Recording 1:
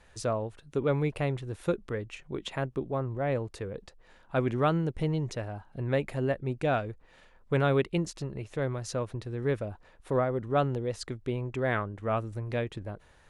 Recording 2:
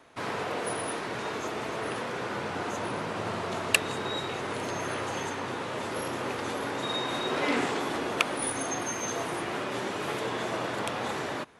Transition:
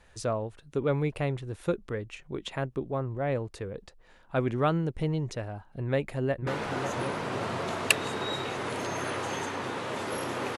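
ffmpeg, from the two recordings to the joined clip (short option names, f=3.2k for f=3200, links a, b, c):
-filter_complex "[0:a]apad=whole_dur=10.57,atrim=end=10.57,atrim=end=6.472[a];[1:a]atrim=start=2.308:end=6.41[b];[a][b]acrossfade=d=0.004:c1=hsin:c2=hsin,asplit=2[c][d];[d]afade=t=in:st=5.83:d=0.01,afade=t=out:st=6.47:d=0.01,aecho=0:1:550|1100|1650|2200|2750|3300|3850|4400:0.446684|0.26801|0.160806|0.0964837|0.0578902|0.0347341|0.0208405|0.0125043[e];[c][e]amix=inputs=2:normalize=0"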